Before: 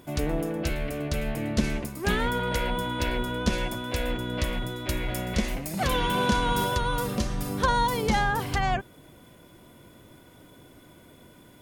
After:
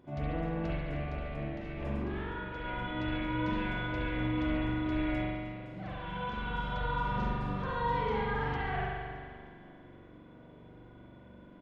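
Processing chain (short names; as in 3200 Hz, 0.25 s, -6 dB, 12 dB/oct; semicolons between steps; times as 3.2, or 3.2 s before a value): dynamic EQ 2600 Hz, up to +6 dB, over -42 dBFS, Q 0.71; limiter -21 dBFS, peak gain reduction 11 dB; 0.72–2.65 negative-ratio compressor -33 dBFS, ratio -0.5; tape spacing loss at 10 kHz 31 dB; 5.22–6.79 fade in linear; feedback echo 0.31 s, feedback 46%, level -15.5 dB; spring tank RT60 1.8 s, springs 42 ms, chirp 30 ms, DRR -8 dB; gain -8.5 dB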